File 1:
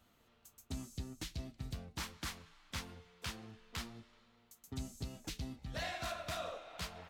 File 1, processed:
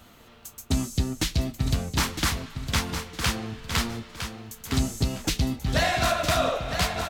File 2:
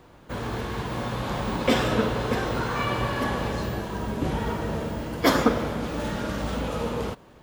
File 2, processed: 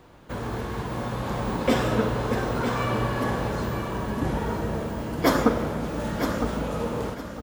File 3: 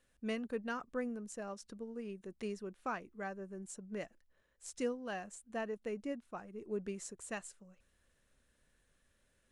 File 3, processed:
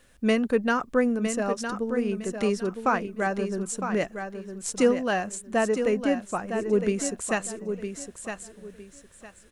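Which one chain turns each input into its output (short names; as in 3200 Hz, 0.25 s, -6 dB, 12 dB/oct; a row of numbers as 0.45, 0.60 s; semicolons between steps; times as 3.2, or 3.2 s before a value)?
dynamic EQ 3300 Hz, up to -5 dB, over -45 dBFS, Q 0.79; feedback echo 0.959 s, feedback 25%, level -8 dB; match loudness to -27 LUFS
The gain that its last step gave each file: +18.0, 0.0, +16.0 dB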